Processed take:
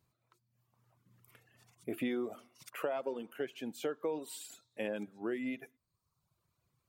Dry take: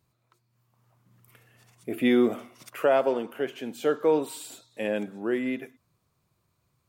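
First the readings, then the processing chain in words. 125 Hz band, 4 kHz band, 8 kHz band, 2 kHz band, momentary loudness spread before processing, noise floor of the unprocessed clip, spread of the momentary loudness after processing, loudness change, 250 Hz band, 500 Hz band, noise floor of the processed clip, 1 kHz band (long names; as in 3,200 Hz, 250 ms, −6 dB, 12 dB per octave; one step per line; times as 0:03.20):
−10.5 dB, −9.5 dB, −6.0 dB, −10.5 dB, 17 LU, −74 dBFS, 11 LU, −12.5 dB, −12.0 dB, −13.0 dB, −84 dBFS, −13.5 dB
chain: reverb reduction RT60 0.93 s
downward compressor 6 to 1, threshold −28 dBFS, peak gain reduction 10.5 dB
level −4.5 dB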